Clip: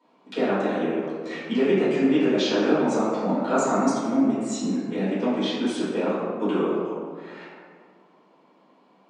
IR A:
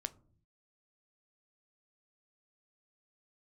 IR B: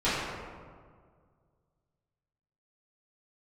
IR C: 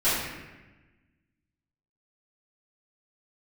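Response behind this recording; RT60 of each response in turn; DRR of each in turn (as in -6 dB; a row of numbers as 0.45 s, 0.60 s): B; 0.50 s, 1.9 s, 1.2 s; 11.5 dB, -14.0 dB, -14.0 dB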